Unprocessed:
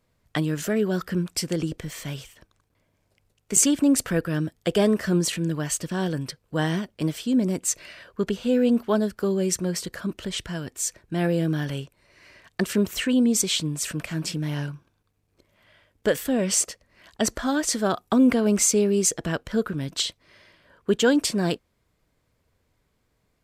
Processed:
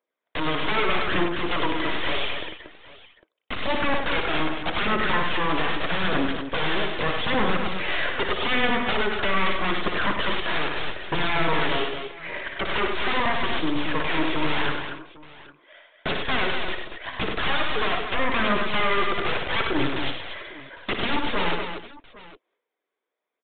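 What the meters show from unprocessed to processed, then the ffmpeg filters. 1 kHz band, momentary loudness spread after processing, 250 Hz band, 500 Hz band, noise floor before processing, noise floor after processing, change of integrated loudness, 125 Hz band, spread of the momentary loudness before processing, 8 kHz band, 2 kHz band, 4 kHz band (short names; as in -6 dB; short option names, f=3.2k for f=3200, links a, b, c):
+10.0 dB, 10 LU, -6.5 dB, -2.0 dB, -71 dBFS, -84 dBFS, -1.0 dB, -6.0 dB, 12 LU, under -40 dB, +10.0 dB, +4.5 dB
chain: -af "bandreject=f=2.8k:w=14,deesser=0.45,agate=range=-33dB:threshold=-47dB:ratio=3:detection=peak,highpass=f=350:w=0.5412,highpass=f=350:w=1.3066,acompressor=threshold=-39dB:ratio=4,aeval=exprs='0.119*(cos(1*acos(clip(val(0)/0.119,-1,1)))-cos(1*PI/2))+0.0422*(cos(8*acos(clip(val(0)/0.119,-1,1)))-cos(8*PI/2))':c=same,aeval=exprs='0.133*sin(PI/2*10*val(0)/0.133)':c=same,aphaser=in_gain=1:out_gain=1:delay=3.1:decay=0.38:speed=0.81:type=triangular,aecho=1:1:58|99|234|325|804:0.422|0.501|0.447|0.119|0.112,aresample=8000,aresample=44100,volume=-2.5dB"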